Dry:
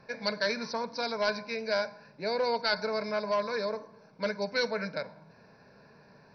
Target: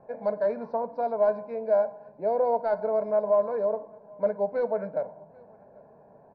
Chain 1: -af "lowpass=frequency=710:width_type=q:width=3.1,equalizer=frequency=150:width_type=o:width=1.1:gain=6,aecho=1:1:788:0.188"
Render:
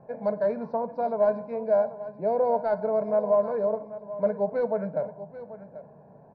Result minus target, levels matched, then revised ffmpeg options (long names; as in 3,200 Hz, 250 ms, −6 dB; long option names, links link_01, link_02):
echo-to-direct +12 dB; 125 Hz band +6.0 dB
-af "lowpass=frequency=710:width_type=q:width=3.1,equalizer=frequency=150:width_type=o:width=1.1:gain=-3,aecho=1:1:788:0.0473"